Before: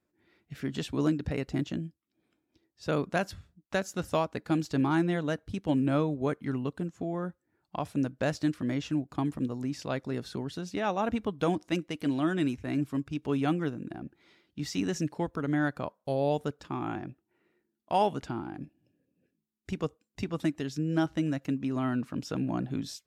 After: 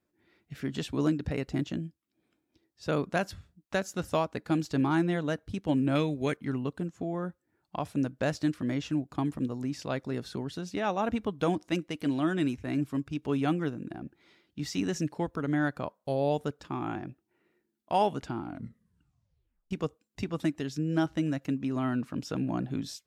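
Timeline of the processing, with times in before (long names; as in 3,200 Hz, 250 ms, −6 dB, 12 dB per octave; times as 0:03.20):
0:05.95–0:06.37: high shelf with overshoot 1,600 Hz +8 dB, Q 1.5
0:18.40: tape stop 1.31 s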